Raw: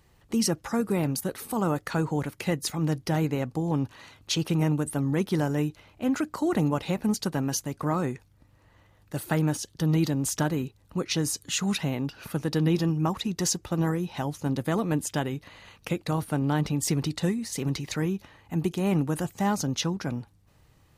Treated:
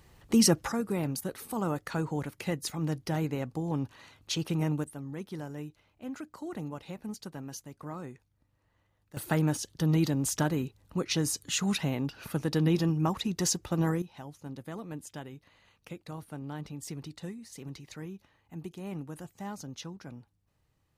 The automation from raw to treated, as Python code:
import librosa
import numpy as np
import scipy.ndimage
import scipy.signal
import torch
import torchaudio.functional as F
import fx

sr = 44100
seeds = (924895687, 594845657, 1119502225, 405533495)

y = fx.gain(x, sr, db=fx.steps((0.0, 3.0), (0.72, -5.0), (4.84, -13.5), (9.17, -2.0), (14.02, -14.0)))